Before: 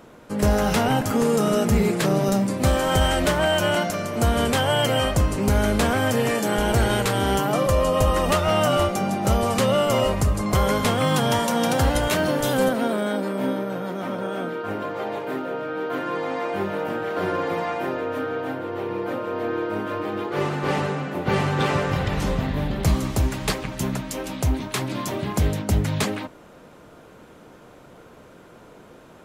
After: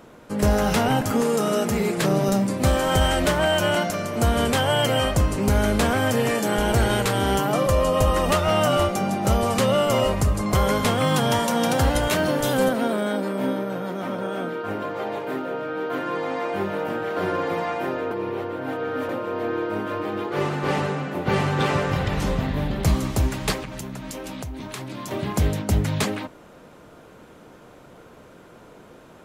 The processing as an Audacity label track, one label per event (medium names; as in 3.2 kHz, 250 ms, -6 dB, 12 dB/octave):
1.210000	1.980000	high-pass 240 Hz 6 dB/octave
18.110000	19.090000	reverse
23.630000	25.110000	compression 12:1, threshold -29 dBFS